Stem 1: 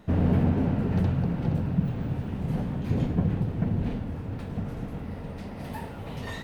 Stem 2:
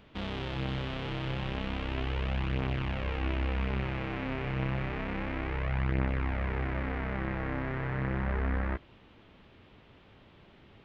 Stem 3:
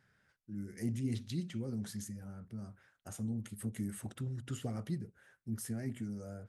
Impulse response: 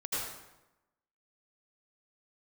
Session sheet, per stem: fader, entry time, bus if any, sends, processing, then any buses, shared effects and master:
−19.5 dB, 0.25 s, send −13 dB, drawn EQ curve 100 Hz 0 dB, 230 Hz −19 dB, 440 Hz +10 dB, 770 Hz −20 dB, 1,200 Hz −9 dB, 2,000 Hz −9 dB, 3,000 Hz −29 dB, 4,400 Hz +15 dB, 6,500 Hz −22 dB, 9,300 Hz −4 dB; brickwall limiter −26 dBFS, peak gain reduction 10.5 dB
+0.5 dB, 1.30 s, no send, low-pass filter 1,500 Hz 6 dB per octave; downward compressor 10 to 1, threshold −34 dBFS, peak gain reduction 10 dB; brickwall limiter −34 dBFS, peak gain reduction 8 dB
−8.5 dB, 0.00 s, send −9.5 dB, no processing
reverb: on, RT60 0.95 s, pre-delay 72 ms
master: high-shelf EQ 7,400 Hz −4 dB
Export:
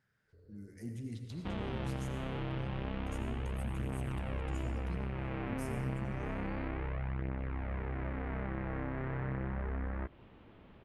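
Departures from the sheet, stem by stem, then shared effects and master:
stem 1 −19.5 dB → −30.5 dB
stem 2: missing brickwall limiter −34 dBFS, peak gain reduction 8 dB

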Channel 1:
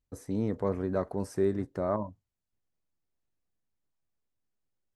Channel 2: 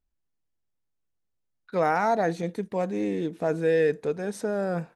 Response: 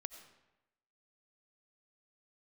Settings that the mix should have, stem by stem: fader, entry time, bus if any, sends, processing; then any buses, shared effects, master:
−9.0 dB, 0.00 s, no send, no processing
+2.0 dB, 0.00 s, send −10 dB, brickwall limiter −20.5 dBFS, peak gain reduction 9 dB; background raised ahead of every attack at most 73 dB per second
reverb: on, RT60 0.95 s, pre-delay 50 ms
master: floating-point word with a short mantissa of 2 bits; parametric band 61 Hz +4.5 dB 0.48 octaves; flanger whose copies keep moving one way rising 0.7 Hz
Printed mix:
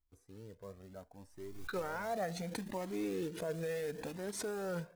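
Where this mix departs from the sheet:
stem 1 −9.0 dB → −16.0 dB
stem 2 +2.0 dB → −5.5 dB

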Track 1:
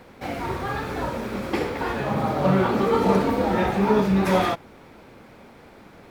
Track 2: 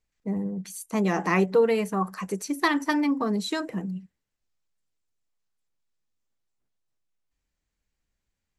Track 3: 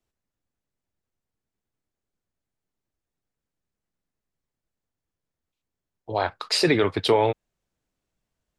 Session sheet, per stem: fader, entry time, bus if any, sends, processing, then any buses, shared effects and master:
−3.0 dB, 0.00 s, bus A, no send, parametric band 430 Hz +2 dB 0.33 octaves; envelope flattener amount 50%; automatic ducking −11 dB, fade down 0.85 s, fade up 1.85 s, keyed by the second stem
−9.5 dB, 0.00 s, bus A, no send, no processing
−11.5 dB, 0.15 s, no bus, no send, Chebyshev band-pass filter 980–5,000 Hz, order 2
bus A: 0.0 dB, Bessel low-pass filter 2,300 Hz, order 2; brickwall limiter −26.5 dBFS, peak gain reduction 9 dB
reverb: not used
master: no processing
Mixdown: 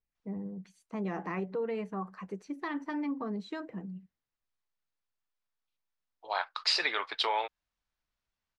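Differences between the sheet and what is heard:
stem 1: muted
stem 3 −11.5 dB → −3.0 dB

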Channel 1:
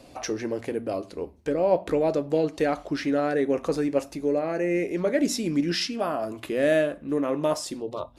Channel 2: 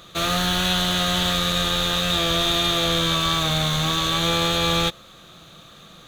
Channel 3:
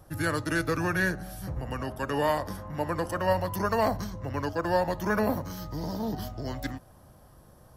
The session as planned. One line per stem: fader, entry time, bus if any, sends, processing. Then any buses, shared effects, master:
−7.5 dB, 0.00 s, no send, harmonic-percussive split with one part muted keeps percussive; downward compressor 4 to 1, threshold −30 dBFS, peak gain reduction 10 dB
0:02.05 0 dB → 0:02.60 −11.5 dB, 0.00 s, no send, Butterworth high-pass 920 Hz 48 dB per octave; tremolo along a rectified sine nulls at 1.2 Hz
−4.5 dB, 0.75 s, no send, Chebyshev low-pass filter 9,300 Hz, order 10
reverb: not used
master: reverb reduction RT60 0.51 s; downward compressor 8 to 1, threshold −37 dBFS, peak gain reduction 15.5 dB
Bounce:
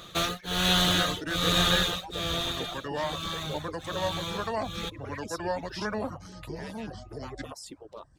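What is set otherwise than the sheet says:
stem 2: missing Butterworth high-pass 920 Hz 48 dB per octave
master: missing downward compressor 8 to 1, threshold −37 dBFS, peak gain reduction 15.5 dB

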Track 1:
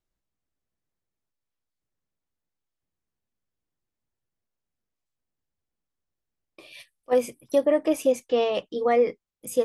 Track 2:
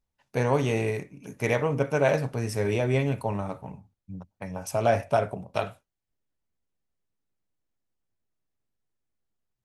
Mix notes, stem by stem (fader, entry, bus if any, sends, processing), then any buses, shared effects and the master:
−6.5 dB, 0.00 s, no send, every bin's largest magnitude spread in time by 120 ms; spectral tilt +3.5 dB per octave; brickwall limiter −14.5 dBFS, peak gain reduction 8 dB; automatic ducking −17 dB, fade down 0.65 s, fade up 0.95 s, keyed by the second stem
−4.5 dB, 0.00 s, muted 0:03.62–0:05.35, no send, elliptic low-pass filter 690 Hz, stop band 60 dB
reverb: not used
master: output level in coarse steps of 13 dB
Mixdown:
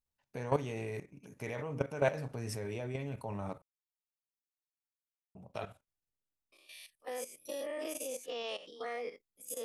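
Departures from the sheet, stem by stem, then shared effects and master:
stem 1 −6.5 dB → −14.5 dB
stem 2: missing elliptic low-pass filter 690 Hz, stop band 60 dB

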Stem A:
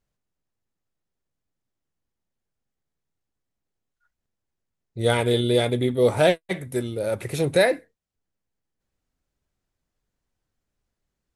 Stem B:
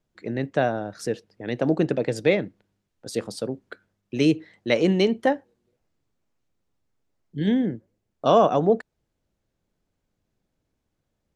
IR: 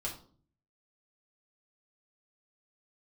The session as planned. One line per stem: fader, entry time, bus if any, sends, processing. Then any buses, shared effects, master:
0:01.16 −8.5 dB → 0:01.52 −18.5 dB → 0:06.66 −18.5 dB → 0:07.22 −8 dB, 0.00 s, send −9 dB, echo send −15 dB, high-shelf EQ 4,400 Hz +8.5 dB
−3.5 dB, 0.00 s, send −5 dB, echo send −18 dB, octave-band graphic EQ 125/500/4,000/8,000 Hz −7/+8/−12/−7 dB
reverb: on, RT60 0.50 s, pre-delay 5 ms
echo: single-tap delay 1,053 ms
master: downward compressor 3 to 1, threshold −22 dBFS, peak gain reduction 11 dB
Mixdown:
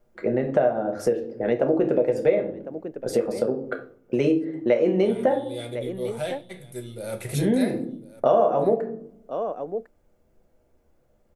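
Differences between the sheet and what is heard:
stem B −3.5 dB → +2.5 dB
reverb return +8.0 dB

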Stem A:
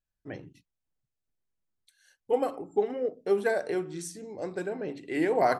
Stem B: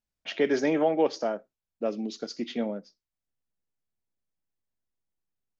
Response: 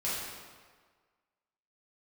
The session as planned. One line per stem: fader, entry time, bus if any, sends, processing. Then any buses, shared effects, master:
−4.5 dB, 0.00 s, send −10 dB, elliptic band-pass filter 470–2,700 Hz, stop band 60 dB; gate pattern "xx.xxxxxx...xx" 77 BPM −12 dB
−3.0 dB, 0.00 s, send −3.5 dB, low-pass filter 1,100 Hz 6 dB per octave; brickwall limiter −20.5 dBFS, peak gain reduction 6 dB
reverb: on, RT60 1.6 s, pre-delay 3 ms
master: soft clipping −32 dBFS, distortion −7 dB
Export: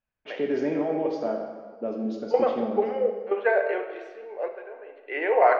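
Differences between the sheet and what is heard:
stem A −4.5 dB → +4.5 dB
master: missing soft clipping −32 dBFS, distortion −7 dB

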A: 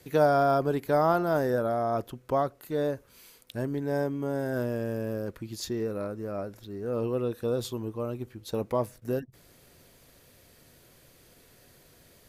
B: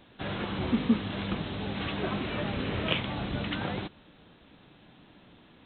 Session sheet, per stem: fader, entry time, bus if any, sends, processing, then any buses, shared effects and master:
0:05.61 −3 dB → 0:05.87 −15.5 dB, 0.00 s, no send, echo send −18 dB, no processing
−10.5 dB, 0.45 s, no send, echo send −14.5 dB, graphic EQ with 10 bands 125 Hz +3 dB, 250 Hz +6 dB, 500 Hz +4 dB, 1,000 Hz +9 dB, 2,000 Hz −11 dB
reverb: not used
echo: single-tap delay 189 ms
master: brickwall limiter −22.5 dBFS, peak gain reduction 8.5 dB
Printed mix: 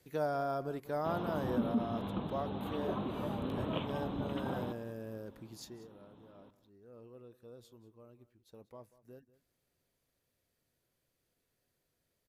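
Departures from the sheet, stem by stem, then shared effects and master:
stem A −3.0 dB → −12.0 dB
stem B: entry 0.45 s → 0.85 s

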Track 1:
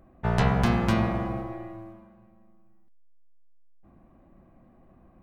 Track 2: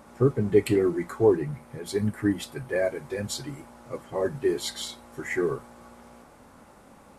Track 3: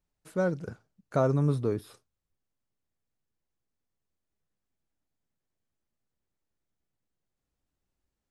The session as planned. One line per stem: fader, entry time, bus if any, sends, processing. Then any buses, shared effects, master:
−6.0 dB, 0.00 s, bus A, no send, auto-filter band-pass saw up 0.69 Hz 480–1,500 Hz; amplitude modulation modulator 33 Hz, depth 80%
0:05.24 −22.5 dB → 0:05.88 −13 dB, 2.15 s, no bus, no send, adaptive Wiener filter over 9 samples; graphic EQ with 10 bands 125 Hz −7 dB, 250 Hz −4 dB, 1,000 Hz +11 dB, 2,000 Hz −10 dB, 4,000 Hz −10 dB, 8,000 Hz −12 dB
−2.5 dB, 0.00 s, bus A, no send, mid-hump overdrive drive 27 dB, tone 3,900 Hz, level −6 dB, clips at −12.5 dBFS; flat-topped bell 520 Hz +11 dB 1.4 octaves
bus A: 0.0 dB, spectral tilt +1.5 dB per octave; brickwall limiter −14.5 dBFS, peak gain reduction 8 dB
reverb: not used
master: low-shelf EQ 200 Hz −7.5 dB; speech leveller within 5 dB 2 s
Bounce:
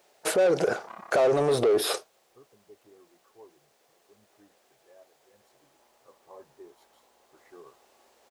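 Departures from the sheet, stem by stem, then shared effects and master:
stem 2 −22.5 dB → −31.0 dB
stem 3 −2.5 dB → +5.0 dB
master: missing speech leveller within 5 dB 2 s

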